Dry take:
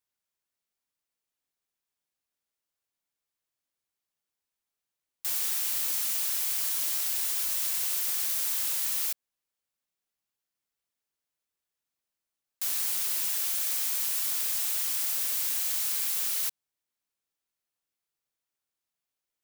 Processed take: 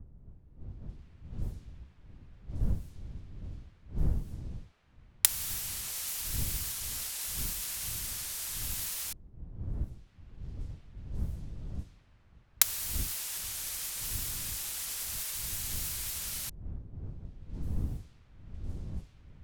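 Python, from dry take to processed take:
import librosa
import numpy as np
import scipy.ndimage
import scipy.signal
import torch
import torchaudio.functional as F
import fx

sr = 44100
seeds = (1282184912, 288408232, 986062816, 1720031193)

y = fx.recorder_agc(x, sr, target_db=-18.5, rise_db_per_s=28.0, max_gain_db=30)
y = fx.dmg_wind(y, sr, seeds[0], corner_hz=83.0, level_db=-34.0)
y = fx.env_lowpass(y, sr, base_hz=1700.0, full_db=-24.0)
y = y * 10.0 ** (-5.0 / 20.0)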